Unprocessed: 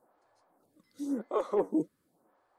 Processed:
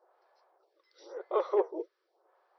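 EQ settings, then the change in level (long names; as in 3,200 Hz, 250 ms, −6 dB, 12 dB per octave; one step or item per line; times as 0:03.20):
linear-phase brick-wall band-pass 340–5,900 Hz
+1.5 dB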